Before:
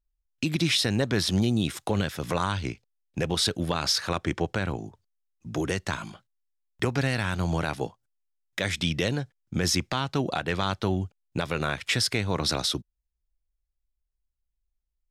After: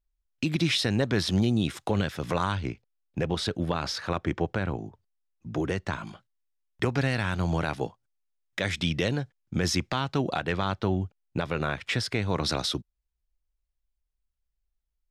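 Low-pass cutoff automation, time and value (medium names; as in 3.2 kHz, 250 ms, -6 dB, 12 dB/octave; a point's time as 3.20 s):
low-pass 6 dB/octave
4.5 kHz
from 2.55 s 2 kHz
from 6.07 s 4.7 kHz
from 10.52 s 2.4 kHz
from 12.22 s 4.9 kHz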